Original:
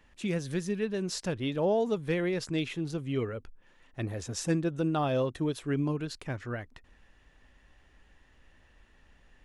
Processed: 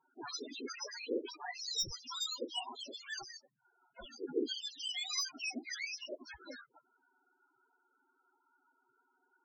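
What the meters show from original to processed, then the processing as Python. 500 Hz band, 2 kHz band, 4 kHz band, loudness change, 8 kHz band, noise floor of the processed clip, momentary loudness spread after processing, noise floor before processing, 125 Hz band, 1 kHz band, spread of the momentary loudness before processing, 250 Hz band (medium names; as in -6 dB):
-13.0 dB, -4.0 dB, +4.5 dB, -8.0 dB, 0.0 dB, -79 dBFS, 14 LU, -62 dBFS, -31.5 dB, -10.5 dB, 10 LU, -15.0 dB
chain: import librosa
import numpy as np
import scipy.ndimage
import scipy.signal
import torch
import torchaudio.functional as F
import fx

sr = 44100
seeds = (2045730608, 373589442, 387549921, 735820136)

y = fx.octave_mirror(x, sr, pivot_hz=1600.0)
y = np.repeat(y[::4], 4)[:len(y)]
y = fx.spec_topn(y, sr, count=8)
y = F.gain(torch.from_numpy(y), -1.5).numpy()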